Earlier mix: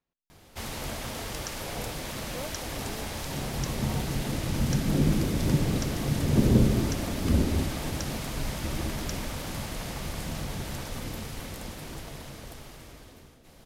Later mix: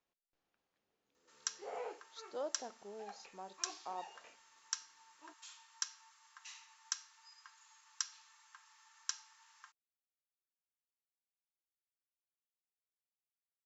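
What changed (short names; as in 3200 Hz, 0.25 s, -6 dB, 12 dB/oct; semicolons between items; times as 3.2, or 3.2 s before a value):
first sound: muted; master: add tone controls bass -12 dB, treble +2 dB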